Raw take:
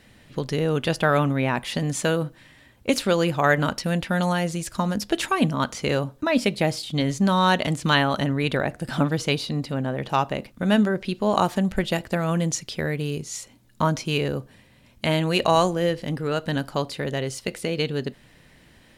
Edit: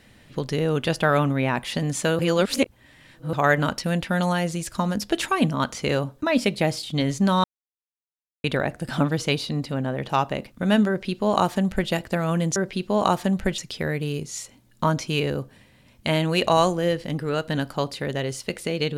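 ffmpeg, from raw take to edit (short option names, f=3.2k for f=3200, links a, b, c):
-filter_complex "[0:a]asplit=7[a][b][c][d][e][f][g];[a]atrim=end=2.192[h];[b]atrim=start=2.188:end=3.332,asetpts=PTS-STARTPTS,areverse[i];[c]atrim=start=3.328:end=7.44,asetpts=PTS-STARTPTS,afade=t=out:st=4.108:d=0.004:c=hsin[j];[d]atrim=start=7.44:end=8.44,asetpts=PTS-STARTPTS,volume=0[k];[e]atrim=start=8.44:end=12.562,asetpts=PTS-STARTPTS,afade=t=in:d=0.004:c=hsin[l];[f]atrim=start=10.878:end=11.902[m];[g]atrim=start=12.558[n];[h][i]acrossfade=d=0.004:c1=hsin:c2=hsin[o];[j][k][l]concat=n=3:v=0:a=1[p];[o][p]acrossfade=d=0.004:c1=hsin:c2=hsin[q];[q][m]acrossfade=d=0.004:c1=hsin:c2=hsin[r];[r][n]acrossfade=d=0.004:c1=hsin:c2=hsin"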